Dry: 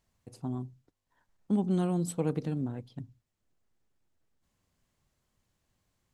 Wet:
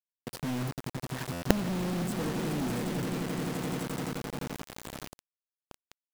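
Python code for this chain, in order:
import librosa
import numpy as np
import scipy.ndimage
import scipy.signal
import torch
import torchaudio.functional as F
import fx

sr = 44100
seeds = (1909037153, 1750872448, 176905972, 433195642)

p1 = fx.recorder_agc(x, sr, target_db=-22.0, rise_db_per_s=43.0, max_gain_db=30)
p2 = scipy.signal.sosfilt(scipy.signal.butter(2, 130.0, 'highpass', fs=sr, output='sos'), p1)
p3 = fx.high_shelf(p2, sr, hz=4800.0, db=-10.5)
p4 = p3 + fx.echo_swell(p3, sr, ms=86, loudest=8, wet_db=-14, dry=0)
p5 = fx.rotary_switch(p4, sr, hz=7.5, then_hz=0.85, switch_at_s=0.78)
p6 = fx.quant_companded(p5, sr, bits=2)
p7 = fx.buffer_glitch(p6, sr, at_s=(1.32,), block=512, repeats=8)
y = p7 * librosa.db_to_amplitude(-5.0)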